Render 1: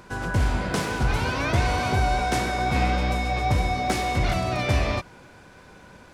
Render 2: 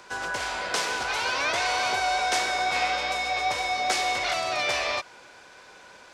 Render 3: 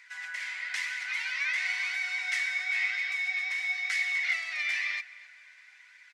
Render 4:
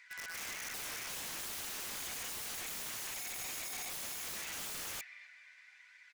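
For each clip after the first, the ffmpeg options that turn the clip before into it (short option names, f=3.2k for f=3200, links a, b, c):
-filter_complex "[0:a]highshelf=f=3.4k:g=9.5,acrossover=split=420|1400[a][b][c];[a]acompressor=threshold=-32dB:ratio=5[d];[d][b][c]amix=inputs=3:normalize=0,acrossover=split=380 7600:gain=0.141 1 0.178[e][f][g];[e][f][g]amix=inputs=3:normalize=0"
-filter_complex "[0:a]flanger=delay=0.4:depth=1.6:regen=67:speed=1:shape=triangular,highpass=f=2k:t=q:w=9.6,asplit=2[a][b];[b]adelay=263,lowpass=f=4.4k:p=1,volume=-19dB,asplit=2[c][d];[d]adelay=263,lowpass=f=4.4k:p=1,volume=0.46,asplit=2[e][f];[f]adelay=263,lowpass=f=4.4k:p=1,volume=0.46,asplit=2[g][h];[h]adelay=263,lowpass=f=4.4k:p=1,volume=0.46[i];[a][c][e][g][i]amix=inputs=5:normalize=0,volume=-8dB"
-af "aeval=exprs='(mod(44.7*val(0)+1,2)-1)/44.7':c=same,volume=-4.5dB"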